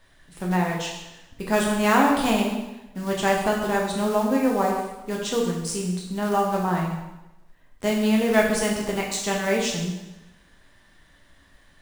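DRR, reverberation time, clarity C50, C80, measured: -1.5 dB, 1.0 s, 3.0 dB, 5.5 dB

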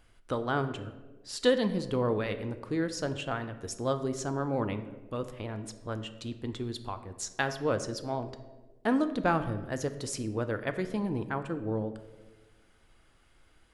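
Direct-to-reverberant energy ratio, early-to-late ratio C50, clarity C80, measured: 9.0 dB, 12.0 dB, 13.5 dB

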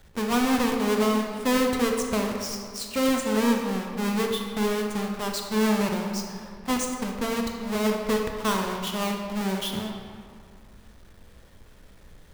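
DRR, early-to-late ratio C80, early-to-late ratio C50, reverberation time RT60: 1.5 dB, 4.5 dB, 3.0 dB, 2.2 s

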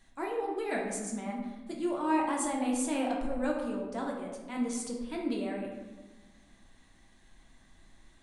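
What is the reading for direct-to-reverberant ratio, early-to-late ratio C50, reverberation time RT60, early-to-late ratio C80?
-2.0 dB, 3.0 dB, 1.2 s, 5.5 dB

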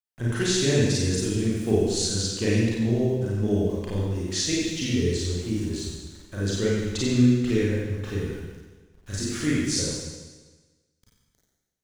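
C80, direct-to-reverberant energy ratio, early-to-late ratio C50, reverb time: 0.5 dB, -7.0 dB, -2.5 dB, 1.3 s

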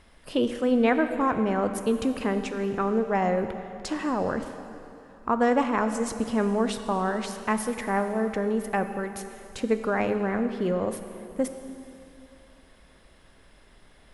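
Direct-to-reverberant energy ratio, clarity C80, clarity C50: 8.0 dB, 9.5 dB, 9.0 dB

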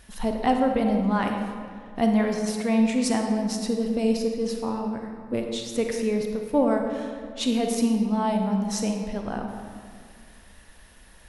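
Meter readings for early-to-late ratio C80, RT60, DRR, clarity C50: 5.0 dB, 2.1 s, 3.0 dB, 3.5 dB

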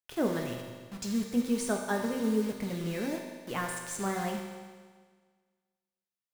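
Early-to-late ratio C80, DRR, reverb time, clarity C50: 5.0 dB, 1.0 dB, 1.6 s, 3.5 dB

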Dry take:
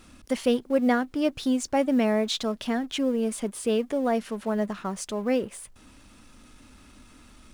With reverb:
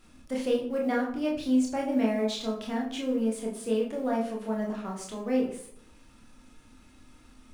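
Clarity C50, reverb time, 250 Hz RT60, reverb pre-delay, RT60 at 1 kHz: 6.5 dB, 0.70 s, 0.75 s, 23 ms, 0.65 s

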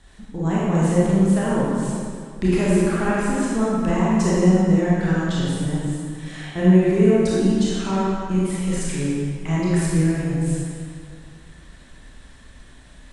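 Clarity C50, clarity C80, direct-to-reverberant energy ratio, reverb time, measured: -4.5 dB, -1.5 dB, -8.0 dB, 2.3 s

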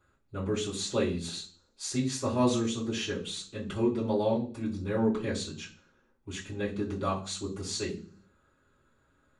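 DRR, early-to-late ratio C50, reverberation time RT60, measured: -8.5 dB, 11.0 dB, 0.45 s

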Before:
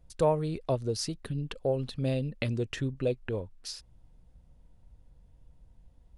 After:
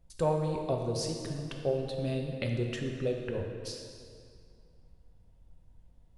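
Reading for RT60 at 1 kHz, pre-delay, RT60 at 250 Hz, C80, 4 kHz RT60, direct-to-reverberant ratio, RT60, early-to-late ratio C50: 2.3 s, 4 ms, 2.3 s, 4.5 dB, 1.8 s, 1.5 dB, 2.3 s, 3.5 dB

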